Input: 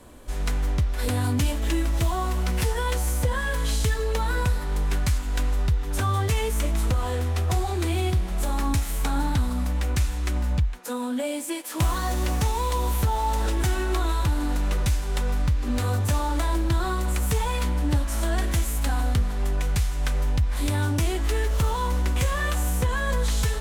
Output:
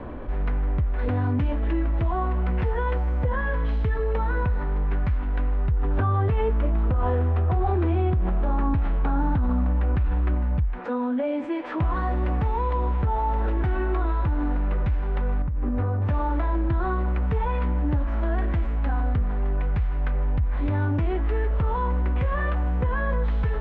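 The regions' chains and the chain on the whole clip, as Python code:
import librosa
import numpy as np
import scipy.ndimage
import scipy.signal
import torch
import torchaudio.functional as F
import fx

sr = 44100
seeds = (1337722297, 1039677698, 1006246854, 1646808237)

y = fx.chain(x, sr, fx.moving_average(points=5),
    fx.peak_eq(hz=2100.0, db=-4.5, octaves=0.41),
    fx.env_flatten(amount_pct=70), at=(5.71, 10.35))
y = fx.chain(y, sr, fx.lowpass(hz=1200.0, slope=6),
    fx.over_compress(threshold_db=-26.0, ratio=-1.0), at=(15.42, 16.02))
y = scipy.signal.sosfilt(scipy.signal.bessel(4, 1500.0, 'lowpass', norm='mag', fs=sr, output='sos'), y)
y = fx.env_flatten(y, sr, amount_pct=50)
y = y * 10.0 ** (-2.0 / 20.0)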